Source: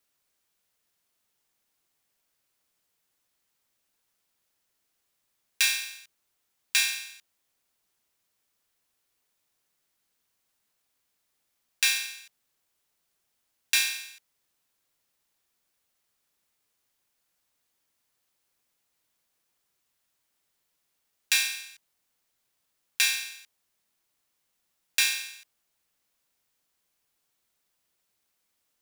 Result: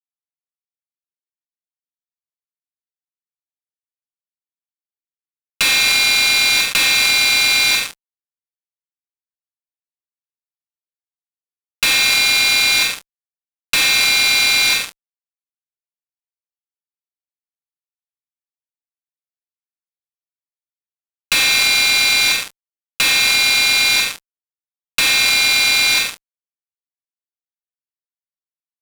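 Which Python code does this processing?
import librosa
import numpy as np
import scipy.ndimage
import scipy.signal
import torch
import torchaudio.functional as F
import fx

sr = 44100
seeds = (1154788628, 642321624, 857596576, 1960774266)

p1 = scipy.signal.sosfilt(scipy.signal.butter(2, 4600.0, 'lowpass', fs=sr, output='sos'), x)
p2 = fx.notch(p1, sr, hz=1800.0, q=11.0)
p3 = p2 + 0.99 * np.pad(p2, (int(2.8 * sr / 1000.0), 0))[:len(p2)]
p4 = fx.fuzz(p3, sr, gain_db=38.0, gate_db=-41.0)
p5 = p4 + fx.echo_feedback(p4, sr, ms=115, feedback_pct=60, wet_db=-12, dry=0)
y = fx.env_flatten(p5, sr, amount_pct=100)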